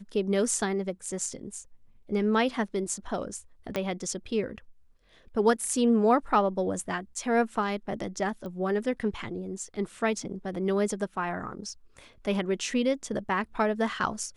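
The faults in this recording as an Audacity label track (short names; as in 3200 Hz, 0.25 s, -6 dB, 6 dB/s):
3.760000	3.760000	pop -15 dBFS
8.460000	8.460000	pop -28 dBFS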